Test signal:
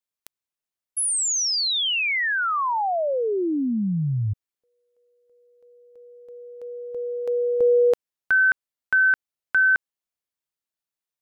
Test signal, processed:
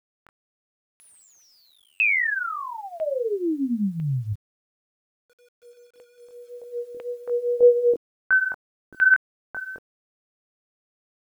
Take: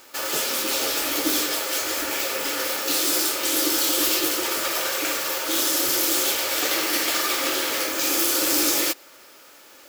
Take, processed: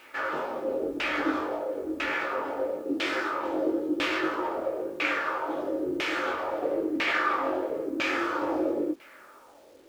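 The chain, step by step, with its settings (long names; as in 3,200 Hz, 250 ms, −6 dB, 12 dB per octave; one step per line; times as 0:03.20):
chorus effect 1.8 Hz, delay 19.5 ms, depth 2.8 ms
auto-filter low-pass saw down 1 Hz 290–2,600 Hz
bit-depth reduction 10 bits, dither none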